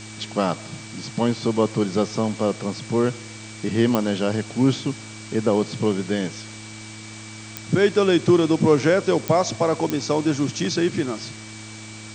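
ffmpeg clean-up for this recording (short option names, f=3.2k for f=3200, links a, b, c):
-af "adeclick=t=4,bandreject=f=108.4:t=h:w=4,bandreject=f=216.8:t=h:w=4,bandreject=f=325.2:t=h:w=4,bandreject=f=2.3k:w=30,afftdn=nr=28:nf=-38"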